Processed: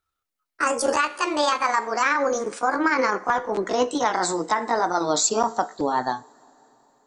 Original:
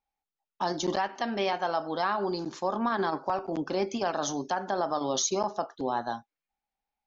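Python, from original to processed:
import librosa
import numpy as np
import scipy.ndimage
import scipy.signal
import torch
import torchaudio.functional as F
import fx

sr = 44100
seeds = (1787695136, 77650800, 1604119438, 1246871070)

y = fx.pitch_glide(x, sr, semitones=8.5, runs='ending unshifted')
y = fx.rev_double_slope(y, sr, seeds[0], early_s=0.36, late_s=4.4, knee_db=-18, drr_db=18.0)
y = y * librosa.db_to_amplitude(8.0)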